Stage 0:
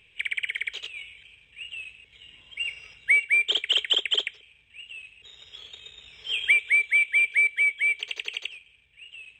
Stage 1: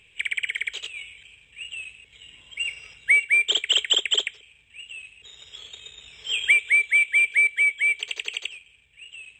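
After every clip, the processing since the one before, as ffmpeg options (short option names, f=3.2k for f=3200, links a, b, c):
-af "equalizer=f=7.6k:t=o:w=0.21:g=14,volume=2dB"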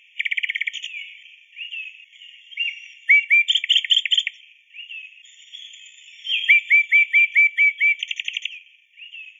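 -af "afftfilt=real='re*eq(mod(floor(b*sr/1024/1800),2),1)':imag='im*eq(mod(floor(b*sr/1024/1800),2),1)':win_size=1024:overlap=0.75,volume=4dB"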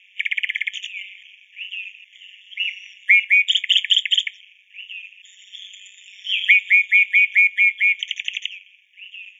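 -af "aeval=exprs='val(0)*sin(2*PI*96*n/s)':c=same,volume=3.5dB"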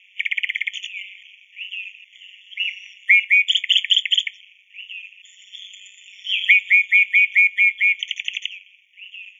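-af "afftfilt=real='re*eq(mod(floor(b*sr/1024/1800),2),1)':imag='im*eq(mod(floor(b*sr/1024/1800),2),1)':win_size=1024:overlap=0.75"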